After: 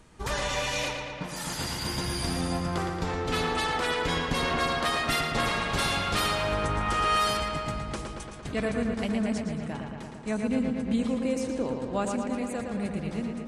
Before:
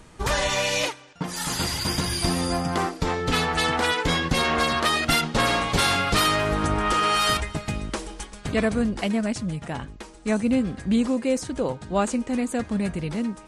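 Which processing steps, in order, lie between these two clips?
feedback echo with a low-pass in the loop 114 ms, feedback 76%, low-pass 4,600 Hz, level −4.5 dB
level −7 dB

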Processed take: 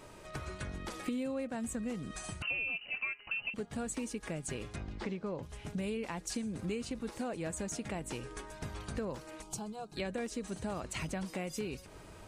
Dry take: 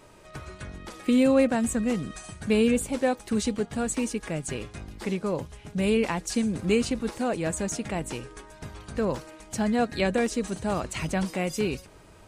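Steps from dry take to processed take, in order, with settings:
downward compressor 5 to 1, threshold −36 dBFS, peak gain reduction 18 dB
0:02.42–0:03.54: voice inversion scrambler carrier 2,900 Hz
0:04.76–0:05.43: high-frequency loss of the air 120 metres
0:09.42–0:09.97: phaser with its sweep stopped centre 370 Hz, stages 8

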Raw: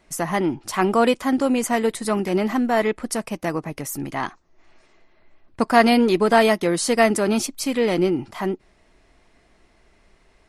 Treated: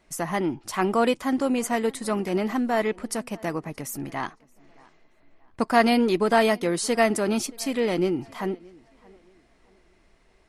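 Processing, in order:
tape delay 624 ms, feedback 35%, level −24 dB, low-pass 3,800 Hz
level −4 dB

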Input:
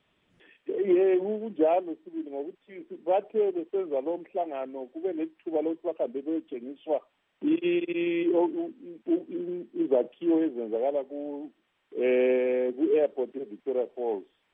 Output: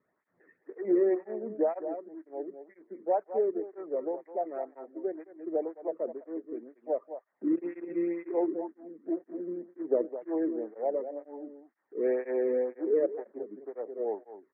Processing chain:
elliptic low-pass filter 1,900 Hz, stop band 40 dB
on a send: single-tap delay 210 ms −10 dB
on the sum: through-zero flanger with one copy inverted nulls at 2 Hz, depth 1.4 ms
level −1.5 dB

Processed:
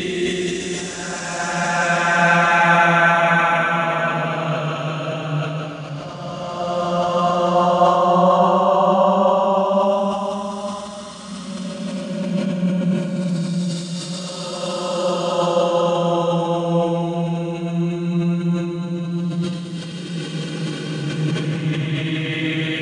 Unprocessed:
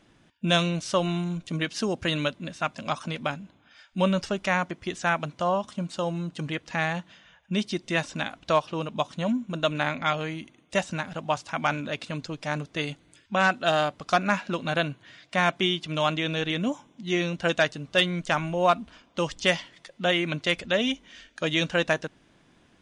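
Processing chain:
extreme stretch with random phases 14×, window 0.25 s, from 0:04.90
level that may fall only so fast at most 45 dB per second
level +8.5 dB

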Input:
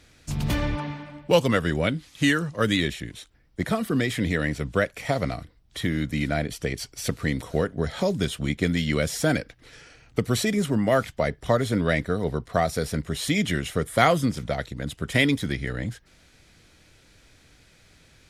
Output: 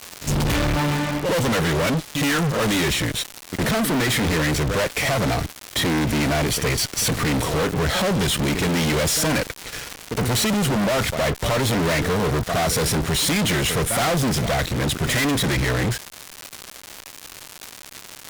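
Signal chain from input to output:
echo ahead of the sound 68 ms −20.5 dB
surface crackle 300 per second −37 dBFS
fuzz pedal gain 42 dB, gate −47 dBFS
level −6 dB

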